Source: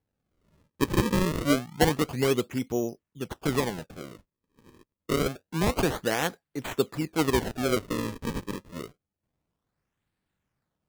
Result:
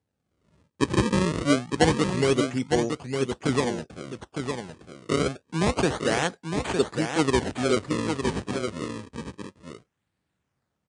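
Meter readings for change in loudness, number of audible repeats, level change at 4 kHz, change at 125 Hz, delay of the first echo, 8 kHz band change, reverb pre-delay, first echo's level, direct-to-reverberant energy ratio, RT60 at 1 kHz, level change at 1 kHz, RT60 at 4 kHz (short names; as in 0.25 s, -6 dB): +2.0 dB, 1, +3.0 dB, +3.0 dB, 0.909 s, +2.5 dB, none, -6.0 dB, none, none, +3.0 dB, none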